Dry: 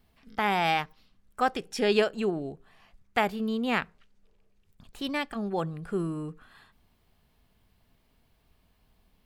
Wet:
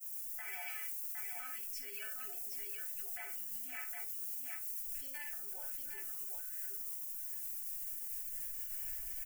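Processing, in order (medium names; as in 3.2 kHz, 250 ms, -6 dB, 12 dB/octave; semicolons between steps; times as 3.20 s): recorder AGC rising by 8.9 dB/s; peaking EQ 850 Hz -10 dB 0.27 oct; inharmonic resonator 130 Hz, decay 0.35 s, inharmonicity 0.008; added noise violet -47 dBFS; static phaser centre 740 Hz, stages 8; on a send: multi-tap echo 58/762 ms -7/-5.5 dB; on the sum: peak limiter -36.5 dBFS, peak gain reduction 11.5 dB; expander -41 dBFS; amplifier tone stack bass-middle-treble 10-0-10; trim +10 dB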